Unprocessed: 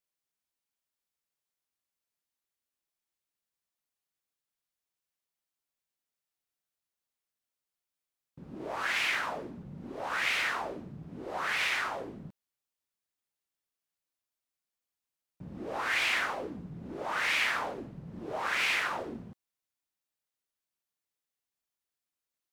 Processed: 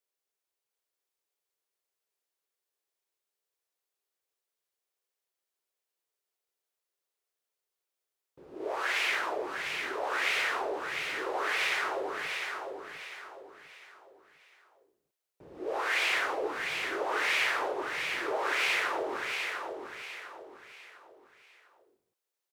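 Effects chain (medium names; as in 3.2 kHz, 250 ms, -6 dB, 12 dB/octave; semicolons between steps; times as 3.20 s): resonant low shelf 290 Hz -11 dB, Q 3; on a send: feedback delay 701 ms, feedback 37%, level -5.5 dB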